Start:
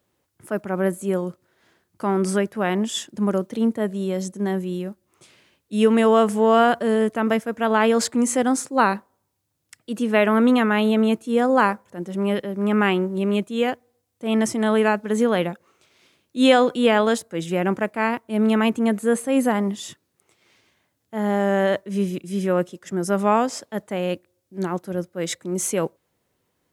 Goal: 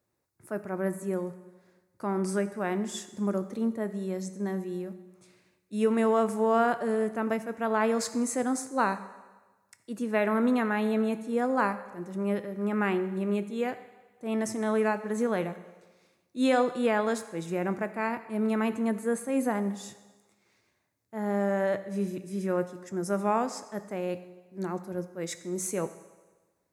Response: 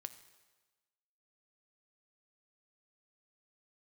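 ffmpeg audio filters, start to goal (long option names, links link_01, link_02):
-filter_complex "[0:a]equalizer=frequency=3100:width=4.9:gain=-12[link_01];[1:a]atrim=start_sample=2205[link_02];[link_01][link_02]afir=irnorm=-1:irlink=0,volume=-3.5dB"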